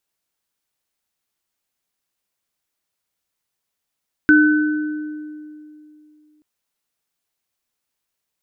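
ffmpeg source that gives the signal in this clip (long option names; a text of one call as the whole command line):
ffmpeg -f lavfi -i "aevalsrc='0.355*pow(10,-3*t/2.78)*sin(2*PI*303*t)+0.316*pow(10,-3*t/1.46)*sin(2*PI*1510*t)':duration=2.13:sample_rate=44100" out.wav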